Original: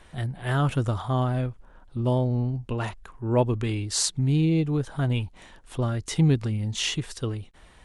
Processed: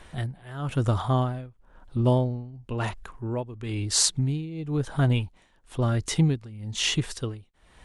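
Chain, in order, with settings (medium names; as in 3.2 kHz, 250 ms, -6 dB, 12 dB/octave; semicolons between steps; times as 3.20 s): tremolo 1 Hz, depth 88%; trim +3.5 dB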